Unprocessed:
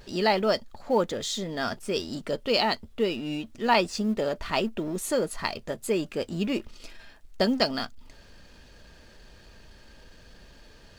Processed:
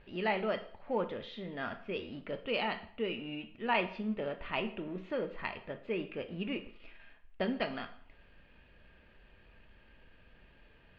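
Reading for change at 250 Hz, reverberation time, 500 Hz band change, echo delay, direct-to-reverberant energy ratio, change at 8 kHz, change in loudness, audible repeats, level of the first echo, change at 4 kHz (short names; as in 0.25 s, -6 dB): -9.0 dB, 0.50 s, -9.0 dB, none, 8.0 dB, under -40 dB, -9.0 dB, none, none, -12.0 dB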